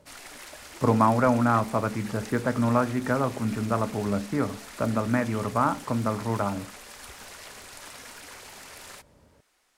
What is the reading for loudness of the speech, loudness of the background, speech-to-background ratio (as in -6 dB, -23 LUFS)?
-26.0 LUFS, -42.5 LUFS, 16.5 dB